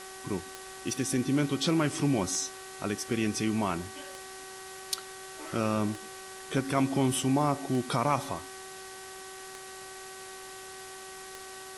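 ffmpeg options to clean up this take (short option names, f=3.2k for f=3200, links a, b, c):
-af "adeclick=t=4,bandreject=f=380:t=h:w=4,bandreject=f=760:t=h:w=4,bandreject=f=1.14k:t=h:w=4,bandreject=f=1.52k:t=h:w=4,bandreject=f=1.9k:t=h:w=4,afwtdn=0.0056"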